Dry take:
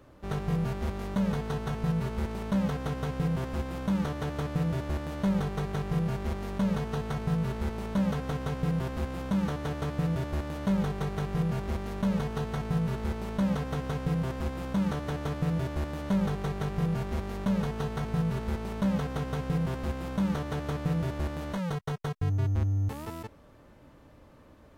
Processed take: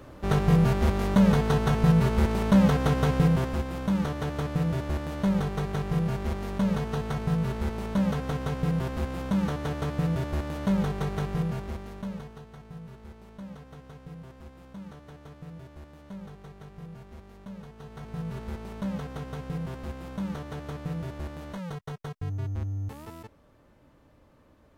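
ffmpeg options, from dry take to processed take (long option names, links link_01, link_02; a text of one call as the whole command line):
ffmpeg -i in.wav -af "volume=18.5dB,afade=type=out:start_time=3.14:duration=0.5:silence=0.473151,afade=type=out:start_time=11.21:duration=0.57:silence=0.473151,afade=type=out:start_time=11.78:duration=0.65:silence=0.316228,afade=type=in:start_time=17.77:duration=0.62:silence=0.316228" out.wav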